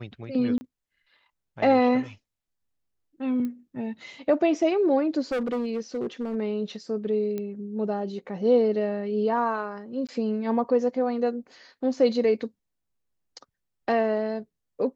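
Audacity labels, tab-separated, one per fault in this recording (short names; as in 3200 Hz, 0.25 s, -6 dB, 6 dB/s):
0.580000	0.610000	gap 30 ms
3.450000	3.450000	pop -22 dBFS
5.320000	6.360000	clipped -24 dBFS
7.380000	7.380000	pop -20 dBFS
10.070000	10.090000	gap 17 ms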